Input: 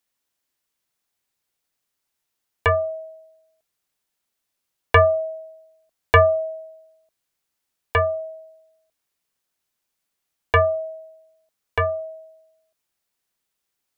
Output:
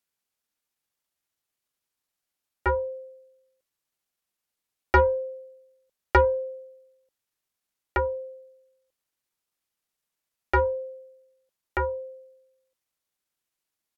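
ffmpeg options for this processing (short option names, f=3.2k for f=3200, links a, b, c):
-af "asetrate=36028,aresample=44100,atempo=1.22405,aeval=exprs='0.531*(cos(1*acos(clip(val(0)/0.531,-1,1)))-cos(1*PI/2))+0.0133*(cos(2*acos(clip(val(0)/0.531,-1,1)))-cos(2*PI/2))+0.0299*(cos(3*acos(clip(val(0)/0.531,-1,1)))-cos(3*PI/2))':c=same,volume=-4dB"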